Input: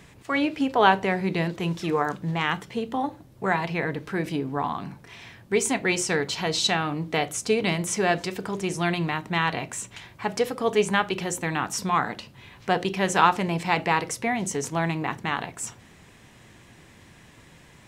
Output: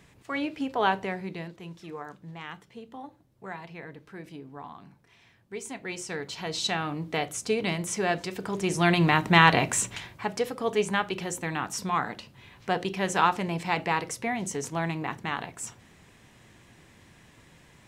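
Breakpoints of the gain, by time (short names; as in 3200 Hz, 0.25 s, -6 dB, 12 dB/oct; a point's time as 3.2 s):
1.02 s -6.5 dB
1.62 s -15 dB
5.54 s -15 dB
6.84 s -4 dB
8.29 s -4 dB
9.22 s +7 dB
9.84 s +7 dB
10.32 s -4 dB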